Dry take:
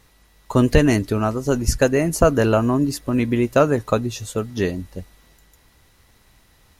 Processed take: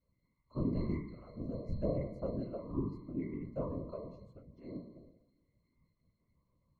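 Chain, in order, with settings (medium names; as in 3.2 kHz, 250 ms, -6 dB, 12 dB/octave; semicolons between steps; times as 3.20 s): pitch-class resonator C, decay 0.8 s; whisper effect; trim -4 dB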